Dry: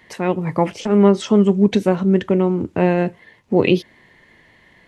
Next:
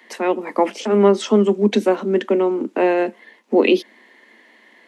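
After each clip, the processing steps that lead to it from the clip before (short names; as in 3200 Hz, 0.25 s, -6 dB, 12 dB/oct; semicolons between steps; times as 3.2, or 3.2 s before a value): steep high-pass 210 Hz 96 dB/oct; gain +1.5 dB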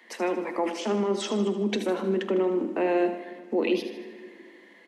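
limiter -12.5 dBFS, peak gain reduction 11 dB; feedback echo 77 ms, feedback 51%, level -10.5 dB; shoebox room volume 3800 m³, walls mixed, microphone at 0.73 m; gain -5.5 dB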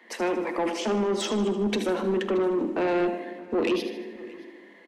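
soft clip -23 dBFS, distortion -13 dB; echo 0.624 s -21 dB; mismatched tape noise reduction decoder only; gain +3.5 dB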